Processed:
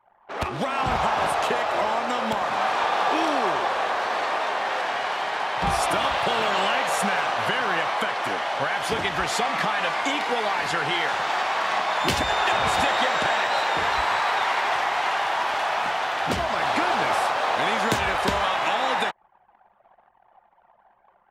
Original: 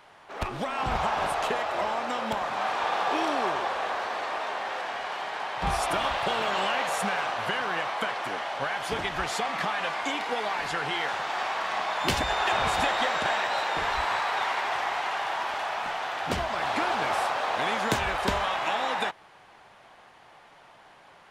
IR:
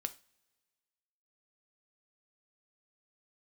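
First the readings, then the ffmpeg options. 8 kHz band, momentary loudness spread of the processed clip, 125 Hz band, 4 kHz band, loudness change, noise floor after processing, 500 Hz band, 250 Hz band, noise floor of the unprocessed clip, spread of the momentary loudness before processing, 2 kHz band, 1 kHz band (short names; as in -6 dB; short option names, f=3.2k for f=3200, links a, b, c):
+4.5 dB, 4 LU, +3.0 dB, +4.5 dB, +4.5 dB, -61 dBFS, +4.5 dB, +4.0 dB, -54 dBFS, 6 LU, +4.5 dB, +4.5 dB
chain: -filter_complex "[0:a]highpass=65,anlmdn=0.0251,asplit=2[a][b];[b]alimiter=limit=-22.5dB:level=0:latency=1:release=352,volume=1.5dB[c];[a][c]amix=inputs=2:normalize=0"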